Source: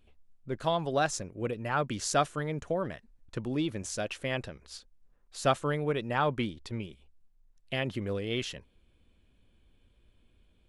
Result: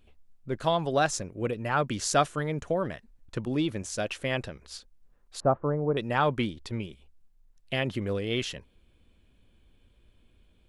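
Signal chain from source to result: 3.45–3.98 expander -35 dBFS; 5.4–5.97 LPF 1100 Hz 24 dB/oct; gain +3 dB

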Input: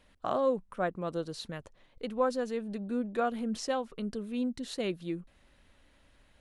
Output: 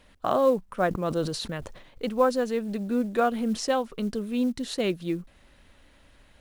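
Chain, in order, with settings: short-mantissa float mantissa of 4-bit; 0.88–2.09 sustainer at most 63 dB/s; gain +6.5 dB

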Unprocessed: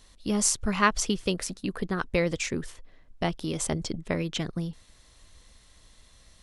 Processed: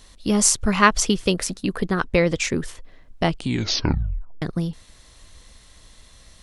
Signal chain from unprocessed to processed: 2–2.42 high shelf 7900 Hz -8.5 dB; 3.25 tape stop 1.17 s; gain +7 dB

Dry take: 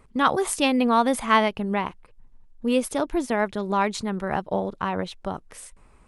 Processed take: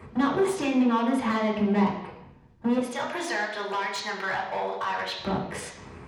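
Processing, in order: 2.78–5.19 HPF 1200 Hz 12 dB/oct; compressor 12:1, threshold -33 dBFS, peak gain reduction 20 dB; hard clip -35.5 dBFS, distortion -9 dB; reverb RT60 0.85 s, pre-delay 3 ms, DRR -4.5 dB

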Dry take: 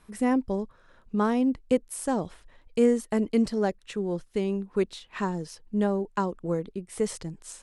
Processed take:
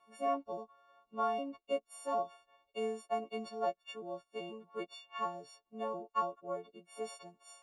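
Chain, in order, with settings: frequency quantiser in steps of 4 st; vowel filter a; gain +2.5 dB

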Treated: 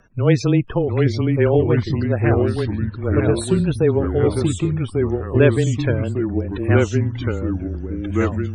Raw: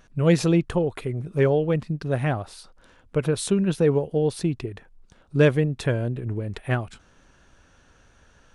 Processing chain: loudest bins only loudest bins 64; echoes that change speed 0.679 s, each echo -2 st, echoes 3; frequency shift -20 Hz; gain +3 dB

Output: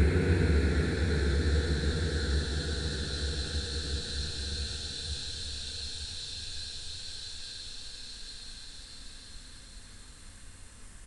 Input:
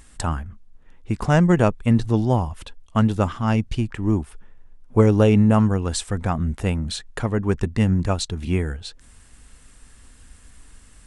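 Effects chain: Paulstretch 27×, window 0.50 s, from 8.7; speakerphone echo 90 ms, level -6 dB

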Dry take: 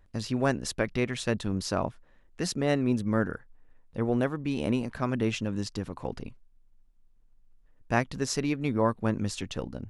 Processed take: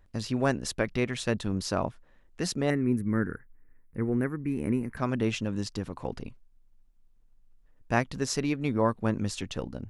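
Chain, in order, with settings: 2.7–4.97 EQ curve 400 Hz 0 dB, 620 Hz -13 dB, 2100 Hz +2 dB, 3300 Hz -24 dB, 7100 Hz -10 dB, 11000 Hz +6 dB

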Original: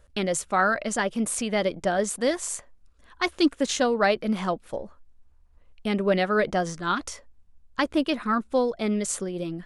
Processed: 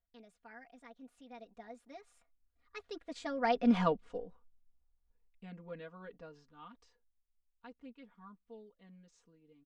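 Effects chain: Doppler pass-by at 3.78, 50 m/s, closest 6.7 m; air absorption 120 m; comb 4.2 ms, depth 98%; gain -4.5 dB

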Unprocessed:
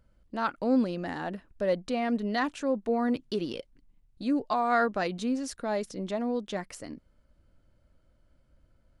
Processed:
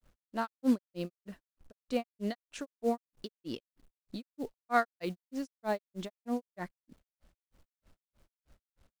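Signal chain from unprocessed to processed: companded quantiser 6-bit; grains 0.166 s, grains 3.2/s

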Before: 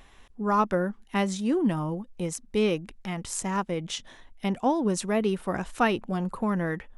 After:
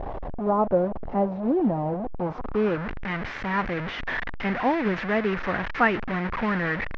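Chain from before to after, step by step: delta modulation 32 kbps, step -25 dBFS; low-pass sweep 690 Hz -> 1900 Hz, 2.04–2.97

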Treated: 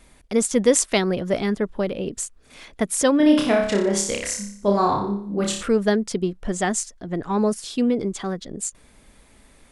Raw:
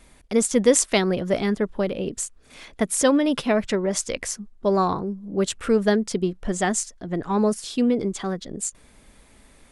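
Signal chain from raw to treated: 3.17–5.63 flutter echo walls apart 5.1 m, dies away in 0.58 s

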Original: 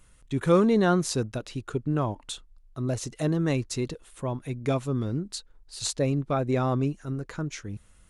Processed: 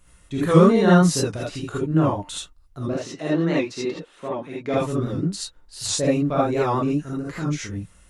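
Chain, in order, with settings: 2.88–4.74 three-band isolator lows -20 dB, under 190 Hz, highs -21 dB, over 5200 Hz; non-linear reverb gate 0.1 s rising, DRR -6.5 dB; record warp 78 rpm, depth 100 cents; gain -1 dB

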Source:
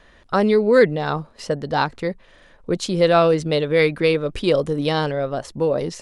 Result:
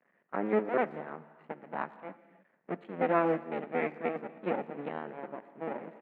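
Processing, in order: cycle switcher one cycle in 2, muted; elliptic band-pass 180–2200 Hz, stop band 40 dB; speakerphone echo 0.12 s, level -22 dB; non-linear reverb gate 0.33 s flat, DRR 11.5 dB; upward expander 1.5:1, over -28 dBFS; gain -9 dB

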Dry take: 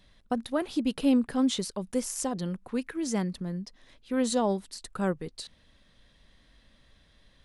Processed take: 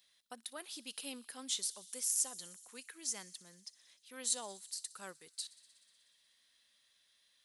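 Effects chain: differentiator; on a send: thin delay 61 ms, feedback 82%, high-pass 3500 Hz, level -19 dB; on the sum: gain +1 dB

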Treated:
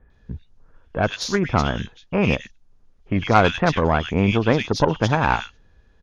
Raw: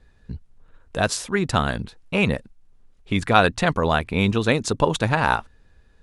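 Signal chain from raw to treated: nonlinear frequency compression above 2800 Hz 1.5:1; bands offset in time lows, highs 0.1 s, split 2100 Hz; added harmonics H 4 -18 dB, 8 -42 dB, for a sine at -2.5 dBFS; gain +1 dB

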